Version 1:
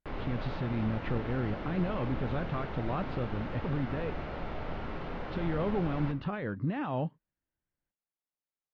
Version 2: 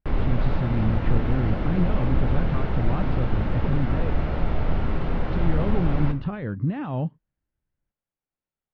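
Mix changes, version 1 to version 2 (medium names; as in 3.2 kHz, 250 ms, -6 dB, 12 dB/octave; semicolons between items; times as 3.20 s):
background +6.0 dB; master: add bass shelf 210 Hz +12 dB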